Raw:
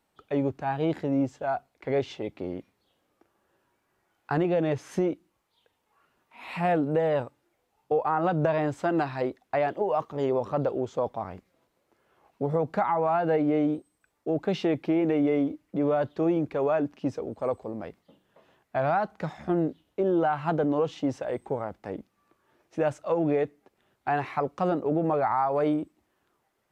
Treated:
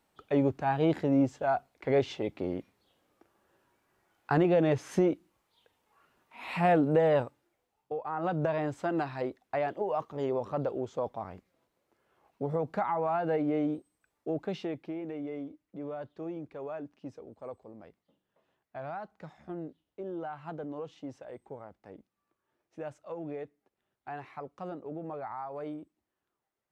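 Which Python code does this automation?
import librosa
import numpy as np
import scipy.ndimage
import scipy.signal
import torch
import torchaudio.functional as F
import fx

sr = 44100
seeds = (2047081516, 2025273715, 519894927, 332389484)

y = fx.gain(x, sr, db=fx.line((7.17, 0.5), (8.02, -11.5), (8.3, -5.0), (14.29, -5.0), (15.0, -14.0)))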